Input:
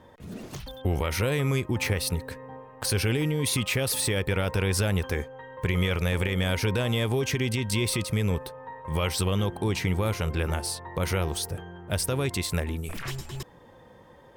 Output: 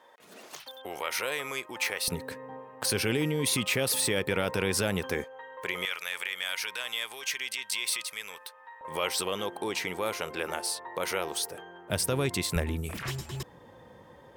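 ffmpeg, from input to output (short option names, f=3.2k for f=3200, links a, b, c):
-af "asetnsamples=n=441:p=0,asendcmd='2.08 highpass f 180;5.24 highpass f 540;5.85 highpass f 1400;8.81 highpass f 410;11.9 highpass f 130;12.56 highpass f 58',highpass=680"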